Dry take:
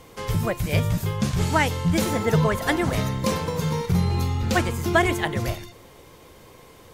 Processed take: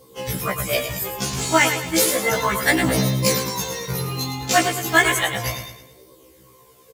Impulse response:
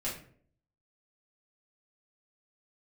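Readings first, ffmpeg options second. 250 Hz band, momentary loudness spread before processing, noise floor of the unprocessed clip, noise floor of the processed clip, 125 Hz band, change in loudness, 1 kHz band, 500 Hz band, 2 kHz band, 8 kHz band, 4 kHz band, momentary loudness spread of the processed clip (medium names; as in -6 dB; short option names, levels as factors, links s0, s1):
-0.5 dB, 5 LU, -49 dBFS, -51 dBFS, -4.0 dB, +3.0 dB, +3.5 dB, +2.0 dB, +7.0 dB, +11.5 dB, +8.0 dB, 9 LU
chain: -filter_complex "[0:a]afftdn=nr=15:nf=-40,highpass=f=260:p=1,aemphasis=mode=production:type=75kf,flanger=delay=0.2:depth=2.7:regen=29:speed=0.33:shape=sinusoidal,asplit=2[s0][s1];[s1]acrusher=bits=3:mode=log:mix=0:aa=0.000001,volume=0.631[s2];[s0][s2]amix=inputs=2:normalize=0,aecho=1:1:108|216|324|432|540:0.376|0.158|0.0663|0.0278|0.0117,afftfilt=real='re*1.73*eq(mod(b,3),0)':imag='im*1.73*eq(mod(b,3),0)':win_size=2048:overlap=0.75,volume=1.78"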